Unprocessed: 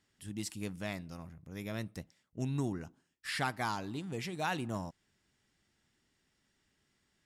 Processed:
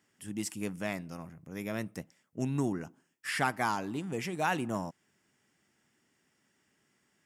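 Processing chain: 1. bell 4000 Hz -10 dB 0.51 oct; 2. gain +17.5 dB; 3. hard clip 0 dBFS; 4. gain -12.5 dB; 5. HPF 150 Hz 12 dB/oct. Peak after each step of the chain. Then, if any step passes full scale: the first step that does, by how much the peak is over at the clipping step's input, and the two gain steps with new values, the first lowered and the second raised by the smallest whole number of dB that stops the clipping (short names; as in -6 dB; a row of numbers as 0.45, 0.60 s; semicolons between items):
-21.5, -4.0, -4.0, -16.5, -14.5 dBFS; no overload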